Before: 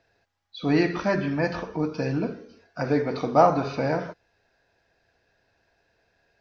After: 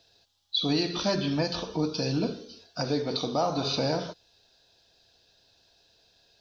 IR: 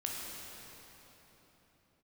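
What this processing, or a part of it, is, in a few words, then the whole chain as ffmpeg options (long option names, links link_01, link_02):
over-bright horn tweeter: -af "highshelf=frequency=2700:width_type=q:width=3:gain=10,alimiter=limit=-16.5dB:level=0:latency=1:release=294"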